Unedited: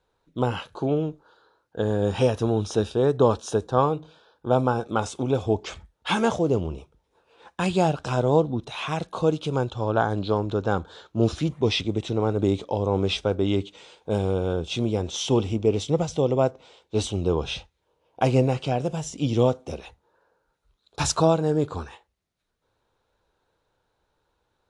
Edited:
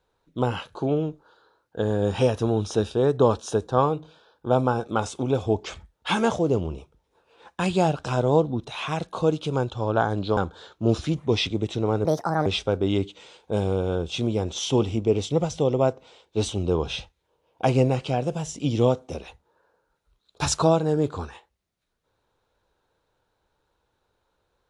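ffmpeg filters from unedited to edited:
-filter_complex "[0:a]asplit=4[a][b][c][d];[a]atrim=end=10.372[e];[b]atrim=start=10.708:end=12.394[f];[c]atrim=start=12.39:end=13.04,asetpts=PTS-STARTPTS,asetrate=69678,aresample=44100,atrim=end_sample=18142,asetpts=PTS-STARTPTS[g];[d]atrim=start=13.036[h];[e][f]acrossfade=d=0.004:c1=hsin:c2=hsin[i];[i][g]acrossfade=d=0.004:c1=hsin:c2=hsin[j];[j][h]acrossfade=d=0.004:c1=hsin:c2=hsin"

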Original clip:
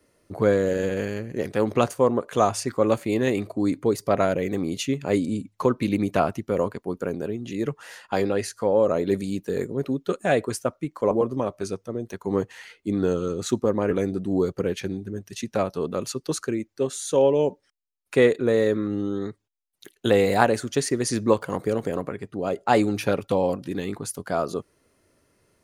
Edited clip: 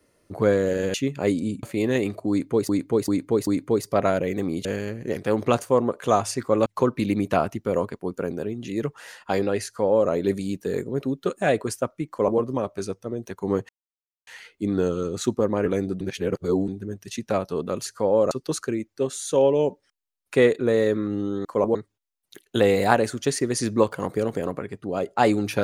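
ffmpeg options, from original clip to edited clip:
-filter_complex "[0:a]asplit=15[a][b][c][d][e][f][g][h][i][j][k][l][m][n][o];[a]atrim=end=0.942[p];[b]atrim=start=4.798:end=5.492[q];[c]atrim=start=2.948:end=4.012[r];[d]atrim=start=3.618:end=4.012[s];[e]atrim=start=3.618:end=4.012[t];[f]atrim=start=3.618:end=4.802[u];[g]atrim=start=0.938:end=2.952[v];[h]atrim=start=5.488:end=12.52,asetpts=PTS-STARTPTS,afade=t=out:st=7.028:d=0.004:c=hsin,apad=pad_dur=0.58[w];[i]atrim=start=12.52:end=14.262,asetpts=PTS-STARTPTS,afade=t=in:d=0.004:c=hsin[x];[j]atrim=start=14.258:end=14.932,asetpts=PTS-STARTPTS,areverse[y];[k]atrim=start=14.928:end=16.112[z];[l]atrim=start=8.478:end=8.932[aa];[m]atrim=start=16.108:end=19.252[ab];[n]atrim=start=10.918:end=11.222[ac];[o]atrim=start=19.248[ad];[p][q]acrossfade=d=0.004:c1=hsin:c2=hsin[ae];[ae][r]acrossfade=d=0.004:c1=hsin:c2=hsin[af];[af][s]acrossfade=d=0.004:c1=hsin:c2=hsin[ag];[ag][t]acrossfade=d=0.004:c1=hsin:c2=hsin[ah];[ah][u]acrossfade=d=0.004:c1=hsin:c2=hsin[ai];[ai][v]acrossfade=d=0.004:c1=hsin:c2=hsin[aj];[w][x]concat=n=2:v=0:a=1[ak];[aj][ak]acrossfade=d=0.004:c1=hsin:c2=hsin[al];[al][y]acrossfade=d=0.004:c1=hsin:c2=hsin[am];[am][z]acrossfade=d=0.004:c1=hsin:c2=hsin[an];[an][aa]acrossfade=d=0.004:c1=hsin:c2=hsin[ao];[ao][ab]acrossfade=d=0.004:c1=hsin:c2=hsin[ap];[ap][ac]acrossfade=d=0.004:c1=hsin:c2=hsin[aq];[aq][ad]acrossfade=d=0.004:c1=hsin:c2=hsin"

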